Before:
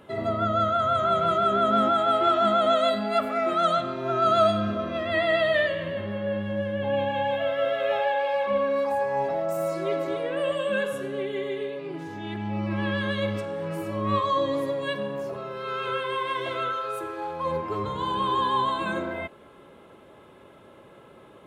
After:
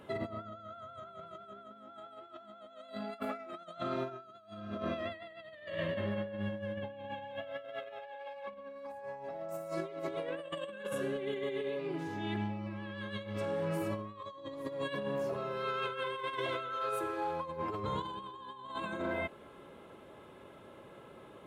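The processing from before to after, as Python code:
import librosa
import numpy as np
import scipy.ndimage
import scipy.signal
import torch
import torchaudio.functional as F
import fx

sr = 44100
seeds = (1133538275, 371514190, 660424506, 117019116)

y = fx.over_compress(x, sr, threshold_db=-31.0, ratio=-0.5)
y = y * librosa.db_to_amplitude(-8.0)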